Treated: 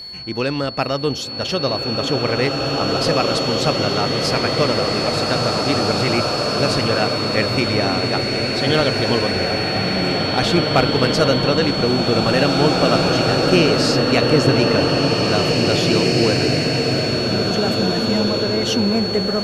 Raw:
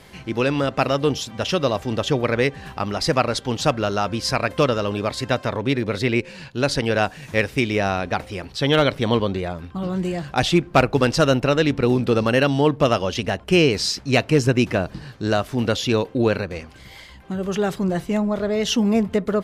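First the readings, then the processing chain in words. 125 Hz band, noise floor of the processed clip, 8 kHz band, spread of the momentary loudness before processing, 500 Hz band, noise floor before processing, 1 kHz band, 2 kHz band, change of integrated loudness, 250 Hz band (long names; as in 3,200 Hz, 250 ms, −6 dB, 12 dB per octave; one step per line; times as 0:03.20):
+3.0 dB, −24 dBFS, +3.0 dB, 8 LU, +3.0 dB, −44 dBFS, +3.0 dB, +3.0 dB, +4.0 dB, +2.5 dB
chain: steady tone 4,400 Hz −30 dBFS
slow-attack reverb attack 2,420 ms, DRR −2 dB
level −1 dB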